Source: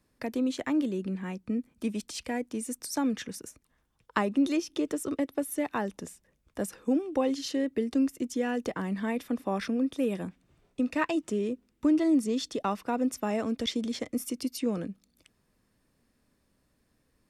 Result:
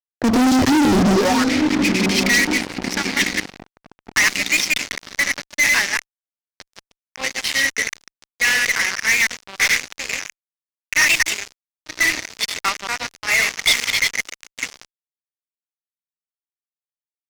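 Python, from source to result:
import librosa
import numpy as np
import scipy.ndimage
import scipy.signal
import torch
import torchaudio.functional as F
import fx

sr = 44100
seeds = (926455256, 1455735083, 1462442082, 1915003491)

p1 = fx.reverse_delay(x, sr, ms=103, wet_db=-3)
p2 = fx.quant_dither(p1, sr, seeds[0], bits=6, dither='none')
p3 = p1 + (p2 * librosa.db_to_amplitude(-4.0))
p4 = fx.peak_eq(p3, sr, hz=200.0, db=8.5, octaves=2.2)
p5 = fx.filter_sweep_highpass(p4, sr, from_hz=91.0, to_hz=2100.0, start_s=0.94, end_s=1.5, q=6.9)
p6 = p5 + fx.echo_diffused(p5, sr, ms=1015, feedback_pct=48, wet_db=-13.5, dry=0)
p7 = fx.env_lowpass(p6, sr, base_hz=460.0, full_db=-20.0)
p8 = fx.fuzz(p7, sr, gain_db=30.0, gate_db=-35.0)
y = fx.peak_eq(p8, sr, hz=5400.0, db=7.0, octaves=0.91)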